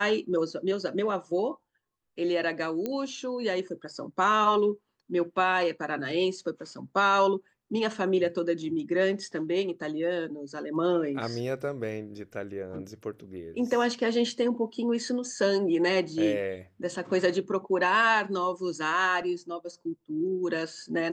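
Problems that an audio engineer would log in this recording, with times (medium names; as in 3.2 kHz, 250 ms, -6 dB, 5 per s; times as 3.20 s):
2.86 s: pop -18 dBFS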